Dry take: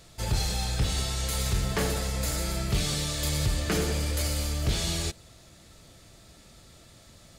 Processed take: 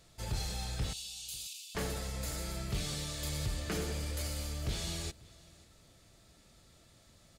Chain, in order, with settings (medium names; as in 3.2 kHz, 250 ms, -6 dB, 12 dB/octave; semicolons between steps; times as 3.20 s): 0.93–1.75 s: steep high-pass 2.5 kHz 96 dB/octave; delay 540 ms -23 dB; trim -9 dB